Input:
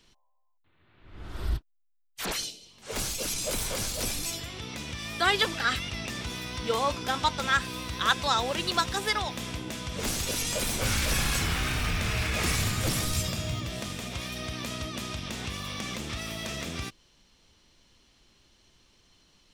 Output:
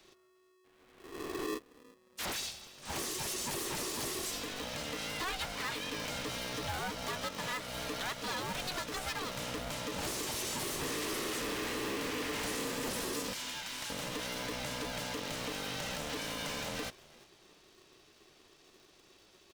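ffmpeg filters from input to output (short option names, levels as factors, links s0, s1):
-filter_complex "[0:a]asettb=1/sr,asplit=3[s0][s1][s2];[s0]atrim=end=13.334[s3];[s1]atrim=start=13.33:end=13.9,asetpts=PTS-STARTPTS,afade=t=in:d=0.004:c=qsin,afade=t=out:st=0.566:d=0.004:c=qsin,highpass=880[s4];[s2]atrim=start=13.896[s5];[s3][s4]acrossfade=d=0.004:c1=hsin:c2=qsin[s6];[s6][s5]acrossfade=d=0.004:c1=qsin:c2=hsin,acompressor=threshold=0.0251:ratio=3,asoftclip=type=tanh:threshold=0.0251,asplit=3[s7][s8][s9];[s8]adelay=355,afreqshift=55,volume=0.075[s10];[s9]adelay=710,afreqshift=110,volume=0.0248[s11];[s7][s10][s11]amix=inputs=3:normalize=0,aeval=exprs='val(0)*sgn(sin(2*PI*370*n/s))':c=same"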